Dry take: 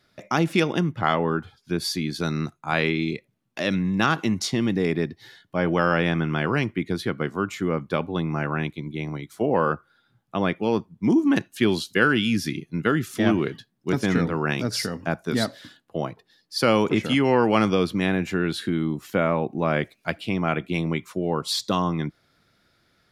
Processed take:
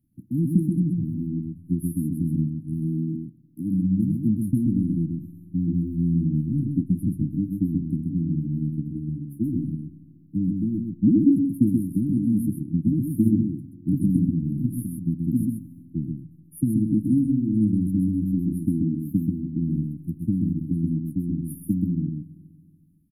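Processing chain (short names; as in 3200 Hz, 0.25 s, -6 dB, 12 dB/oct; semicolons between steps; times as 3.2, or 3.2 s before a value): transient shaper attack +7 dB, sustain +1 dB; brick-wall FIR band-stop 330–9500 Hz; fixed phaser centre 2900 Hz, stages 4; echo 0.13 s -3.5 dB; spring tank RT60 2.1 s, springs 32/47 ms, chirp 75 ms, DRR 13 dB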